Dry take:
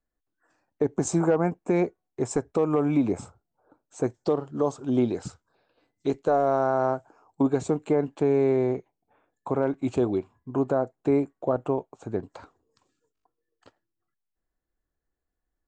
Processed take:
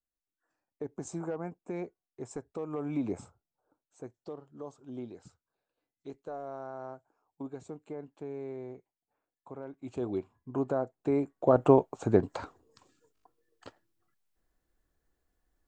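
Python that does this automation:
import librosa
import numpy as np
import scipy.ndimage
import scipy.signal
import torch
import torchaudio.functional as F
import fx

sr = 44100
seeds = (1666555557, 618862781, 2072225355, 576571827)

y = fx.gain(x, sr, db=fx.line((2.66, -14.0), (3.13, -7.5), (4.03, -18.0), (9.74, -18.0), (10.18, -6.0), (11.15, -6.0), (11.67, 6.0)))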